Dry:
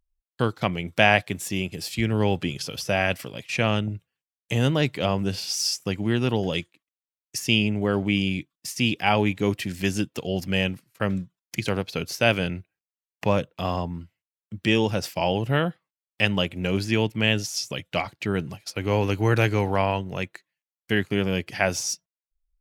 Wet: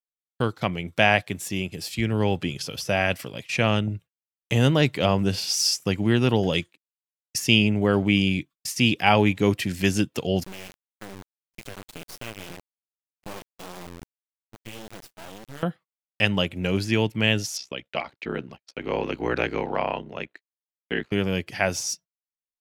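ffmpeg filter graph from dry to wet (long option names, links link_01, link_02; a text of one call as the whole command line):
ffmpeg -i in.wav -filter_complex "[0:a]asettb=1/sr,asplit=3[link_01][link_02][link_03];[link_01]atrim=end=10.434[link_04];[link_02]atrim=start=10.43:end=15.63,asetpts=PTS-STARTPTS,afade=type=in:duration=0.004:curve=qsin,afade=type=out:start_time=5.196:duration=0.004:curve=qsin,flanger=delay=5.1:depth=4.6:regen=30:speed=1.8:shape=sinusoidal,acompressor=threshold=-41dB:ratio=3:attack=3.2:release=140:knee=1:detection=peak,acrusher=bits=4:dc=4:mix=0:aa=0.000001[link_05];[link_03]atrim=start=15.626[link_06];[link_04][link_05]acrossfade=duration=0.004:curve1=hsin:curve2=qsin[link_07];[link_07][link_06]acrossfade=duration=0.004:curve1=qsin:curve2=hsin,asettb=1/sr,asplit=3[link_08][link_09][link_10];[link_08]atrim=end=17.574[link_11];[link_09]atrim=start=17.57:end=21.12,asetpts=PTS-STARTPTS,afade=type=in:duration=0.004:curve=qsin,afade=type=out:start_time=3.546:duration=0.004:curve=qsin,acrossover=split=190 4900:gain=0.158 1 0.112[link_12][link_13][link_14];[link_12][link_13][link_14]amix=inputs=3:normalize=0,aeval=exprs='val(0)*sin(2*PI*32*n/s)':channel_layout=same[link_15];[link_10]atrim=start=21.116[link_16];[link_11][link_15]acrossfade=duration=0.004:curve1=hsin:curve2=qsin[link_17];[link_17][link_16]acrossfade=duration=0.004:curve1=qsin:curve2=hsin,dynaudnorm=framelen=670:gausssize=9:maxgain=11.5dB,agate=range=-41dB:threshold=-41dB:ratio=16:detection=peak,volume=-1dB" out.wav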